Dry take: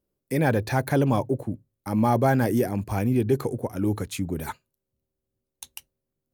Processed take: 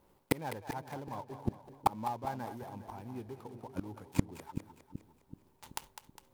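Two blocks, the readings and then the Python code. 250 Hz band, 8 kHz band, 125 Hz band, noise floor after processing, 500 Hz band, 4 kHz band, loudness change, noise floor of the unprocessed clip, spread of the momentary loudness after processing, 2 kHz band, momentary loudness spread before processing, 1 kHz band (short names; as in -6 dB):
-15.5 dB, -10.0 dB, -16.5 dB, -69 dBFS, -17.5 dB, -8.5 dB, -15.0 dB, -84 dBFS, 17 LU, -15.0 dB, 16 LU, -8.5 dB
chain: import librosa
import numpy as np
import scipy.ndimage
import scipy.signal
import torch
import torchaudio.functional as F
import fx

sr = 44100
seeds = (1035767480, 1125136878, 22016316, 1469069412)

p1 = fx.dead_time(x, sr, dead_ms=0.14)
p2 = fx.peak_eq(p1, sr, hz=910.0, db=13.5, octaves=0.59)
p3 = fx.tremolo_shape(p2, sr, shape='triangle', hz=2.6, depth_pct=45)
p4 = fx.gate_flip(p3, sr, shuts_db=-24.0, range_db=-34)
p5 = p4 + fx.echo_split(p4, sr, split_hz=430.0, low_ms=380, high_ms=204, feedback_pct=52, wet_db=-10.0, dry=0)
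y = p5 * librosa.db_to_amplitude(13.0)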